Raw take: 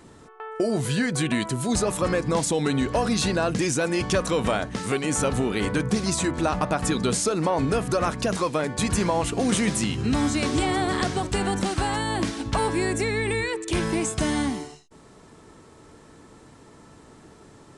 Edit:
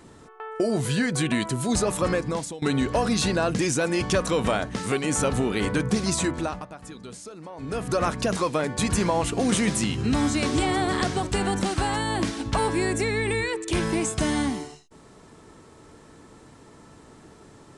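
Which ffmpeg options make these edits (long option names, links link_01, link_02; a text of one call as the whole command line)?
ffmpeg -i in.wav -filter_complex "[0:a]asplit=4[link_01][link_02][link_03][link_04];[link_01]atrim=end=2.62,asetpts=PTS-STARTPTS,afade=type=out:start_time=2.11:duration=0.51:silence=0.0944061[link_05];[link_02]atrim=start=2.62:end=6.67,asetpts=PTS-STARTPTS,afade=type=in:duration=0.004:curve=hsin:silence=0.0944061,afade=type=out:start_time=3.63:duration=0.42:silence=0.141254[link_06];[link_03]atrim=start=6.67:end=7.57,asetpts=PTS-STARTPTS,volume=-17dB[link_07];[link_04]atrim=start=7.57,asetpts=PTS-STARTPTS,afade=type=in:duration=0.42:silence=0.141254[link_08];[link_05][link_06][link_07][link_08]concat=n=4:v=0:a=1" out.wav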